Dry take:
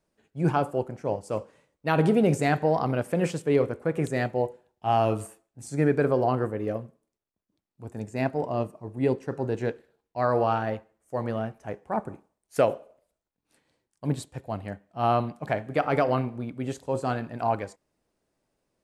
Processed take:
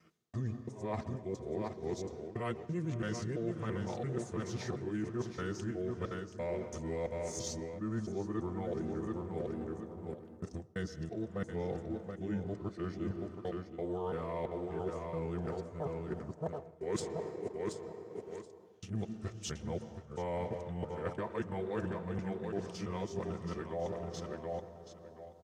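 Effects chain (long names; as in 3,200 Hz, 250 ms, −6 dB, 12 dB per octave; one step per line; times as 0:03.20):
reversed piece by piece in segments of 249 ms
high-pass filter 96 Hz
low-shelf EQ 150 Hz −8.5 dB
repeating echo 539 ms, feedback 17%, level −9.5 dB
convolution reverb RT60 2.9 s, pre-delay 80 ms, DRR 14 dB
in parallel at −10 dB: dead-zone distortion −44.5 dBFS
on the sum: wrong playback speed 45 rpm record played at 33 rpm
parametric band 690 Hz −5 dB 2.9 octaves
reversed playback
downward compressor 6 to 1, threshold −38 dBFS, peak gain reduction 18 dB
reversed playback
notch comb filter 280 Hz
level +4 dB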